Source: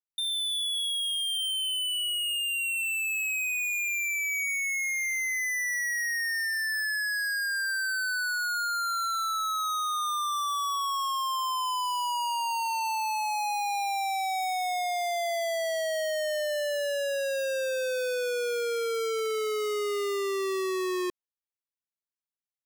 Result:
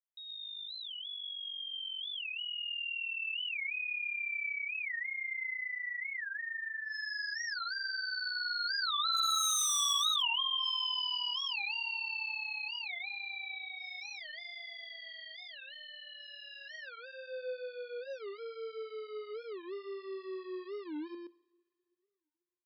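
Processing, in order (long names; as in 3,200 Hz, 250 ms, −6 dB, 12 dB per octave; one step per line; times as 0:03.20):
source passing by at 0:09.59, 16 m/s, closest 3.1 metres
brick-wall band-pass 150–5,200 Hz
in parallel at −1.5 dB: downward compressor 16 to 1, threshold −48 dBFS, peak gain reduction 18.5 dB
on the sum: coupled-rooms reverb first 0.86 s, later 3.1 s, from −18 dB, DRR 17 dB
wave folding −33.5 dBFS
on a send: single-tap delay 122 ms −3 dB
on the sum: high-pass filter sweep 2,500 Hz → 310 Hz, 0:16.54–0:17.70
wow of a warped record 45 rpm, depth 250 cents
level +8.5 dB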